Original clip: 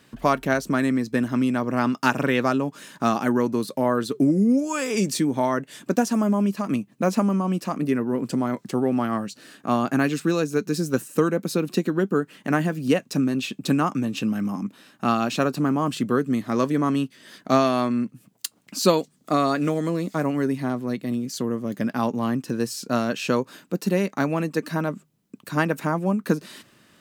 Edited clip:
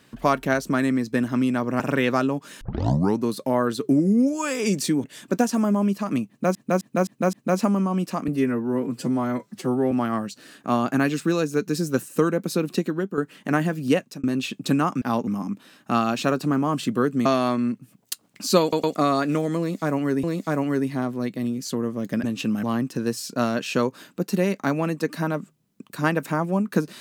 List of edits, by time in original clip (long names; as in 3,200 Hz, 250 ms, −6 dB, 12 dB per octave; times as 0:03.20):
0:01.80–0:02.11: remove
0:02.92: tape start 0.57 s
0:05.35–0:05.62: remove
0:06.87–0:07.13: repeat, 5 plays
0:07.82–0:08.91: time-stretch 1.5×
0:11.59–0:12.17: fade out equal-power, to −8.5 dB
0:12.98–0:13.23: fade out
0:14.01–0:14.41: swap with 0:21.91–0:22.17
0:16.39–0:17.58: remove
0:18.94: stutter in place 0.11 s, 3 plays
0:19.91–0:20.56: repeat, 2 plays